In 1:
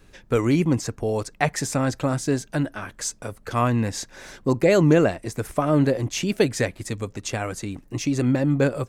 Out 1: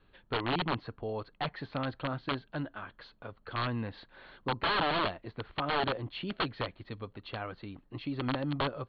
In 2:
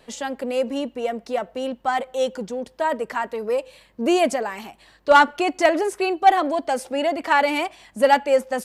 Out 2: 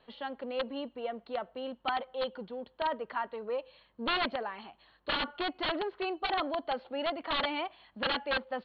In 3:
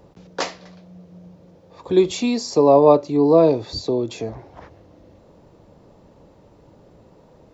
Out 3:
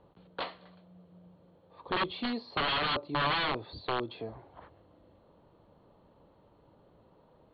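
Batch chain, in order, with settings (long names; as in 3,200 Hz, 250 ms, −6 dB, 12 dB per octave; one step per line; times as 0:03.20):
wrap-around overflow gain 13.5 dB
Chebyshev low-pass with heavy ripple 4,400 Hz, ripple 6 dB
level −7 dB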